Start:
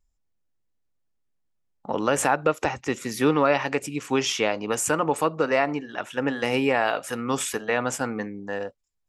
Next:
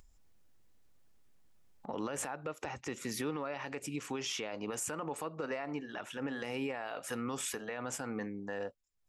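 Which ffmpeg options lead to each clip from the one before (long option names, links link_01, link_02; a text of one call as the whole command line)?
ffmpeg -i in.wav -af "acompressor=threshold=-26dB:ratio=4,alimiter=limit=-22dB:level=0:latency=1:release=30,acompressor=mode=upward:threshold=-43dB:ratio=2.5,volume=-5.5dB" out.wav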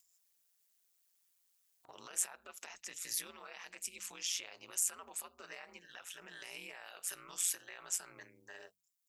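ffmpeg -i in.wav -af "aderivative,aeval=exprs='val(0)*sin(2*PI*89*n/s)':channel_layout=same,bandreject=frequency=50:width_type=h:width=6,bandreject=frequency=100:width_type=h:width=6,bandreject=frequency=150:width_type=h:width=6,bandreject=frequency=200:width_type=h:width=6,volume=8dB" out.wav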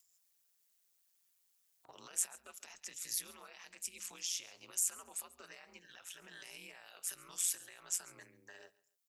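ffmpeg -i in.wav -filter_complex "[0:a]acrossover=split=250|3500[link_01][link_02][link_03];[link_02]alimiter=level_in=19.5dB:limit=-24dB:level=0:latency=1:release=285,volume=-19.5dB[link_04];[link_01][link_04][link_03]amix=inputs=3:normalize=0,aecho=1:1:138|276:0.0891|0.0214" out.wav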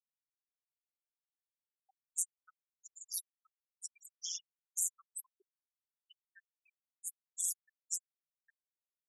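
ffmpeg -i in.wav -af "afftfilt=real='re*gte(hypot(re,im),0.0178)':imag='im*gte(hypot(re,im),0.0178)':win_size=1024:overlap=0.75" out.wav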